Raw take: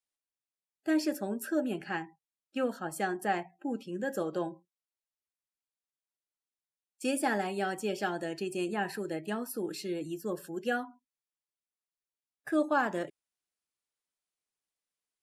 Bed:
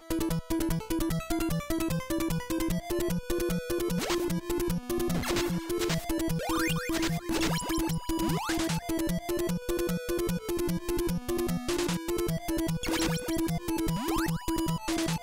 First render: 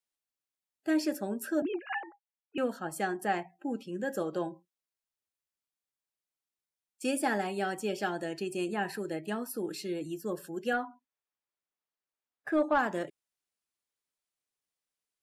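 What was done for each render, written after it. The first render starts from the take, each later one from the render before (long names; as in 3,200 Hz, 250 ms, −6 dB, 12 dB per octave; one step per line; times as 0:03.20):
0:01.62–0:02.58: three sine waves on the formant tracks
0:10.73–0:12.79: mid-hump overdrive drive 13 dB, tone 1,100 Hz, clips at −15 dBFS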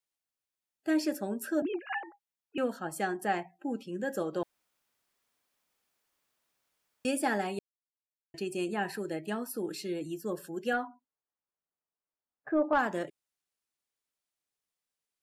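0:04.43–0:07.05: fill with room tone
0:07.59–0:08.34: silence
0:10.87–0:12.73: low-pass filter 1,300 Hz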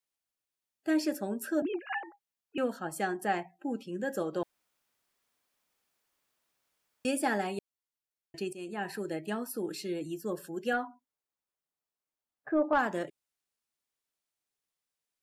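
0:08.53–0:09.01: fade in, from −13 dB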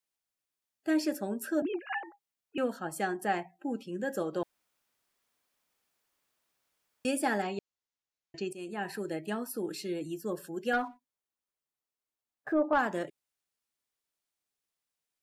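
0:07.42–0:08.51: Butterworth low-pass 7,400 Hz 96 dB per octave
0:10.73–0:12.53: leveller curve on the samples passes 1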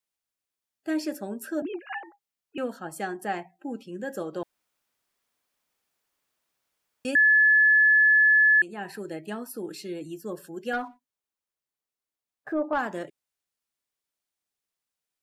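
0:07.15–0:08.62: beep over 1,720 Hz −15 dBFS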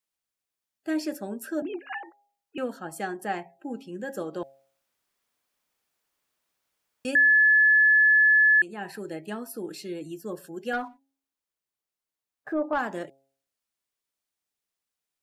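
hum removal 135.8 Hz, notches 6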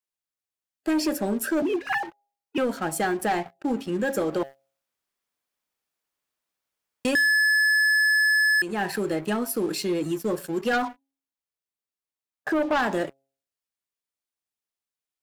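leveller curve on the samples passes 3
downward compressor 2.5 to 1, threshold −22 dBFS, peak gain reduction 4.5 dB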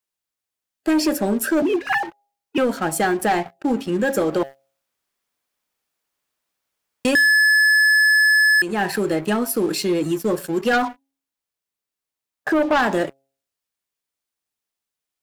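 level +5.5 dB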